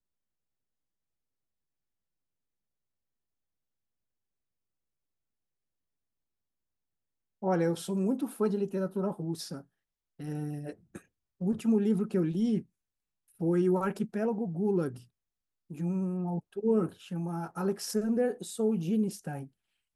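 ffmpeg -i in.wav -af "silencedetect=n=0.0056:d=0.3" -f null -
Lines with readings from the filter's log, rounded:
silence_start: 0.00
silence_end: 7.42 | silence_duration: 7.42
silence_start: 9.61
silence_end: 10.20 | silence_duration: 0.58
silence_start: 10.98
silence_end: 11.41 | silence_duration: 0.43
silence_start: 12.62
silence_end: 13.40 | silence_duration: 0.78
silence_start: 15.00
silence_end: 15.70 | silence_duration: 0.70
silence_start: 19.47
silence_end: 19.95 | silence_duration: 0.49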